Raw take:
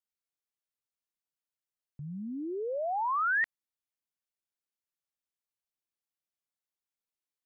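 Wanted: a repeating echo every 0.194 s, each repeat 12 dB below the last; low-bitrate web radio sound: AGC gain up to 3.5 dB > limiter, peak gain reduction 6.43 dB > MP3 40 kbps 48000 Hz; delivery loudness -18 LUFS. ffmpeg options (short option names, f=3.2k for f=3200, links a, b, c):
-af "aecho=1:1:194|388|582:0.251|0.0628|0.0157,dynaudnorm=m=3.5dB,alimiter=level_in=4dB:limit=-24dB:level=0:latency=1,volume=-4dB,volume=17.5dB" -ar 48000 -c:a libmp3lame -b:a 40k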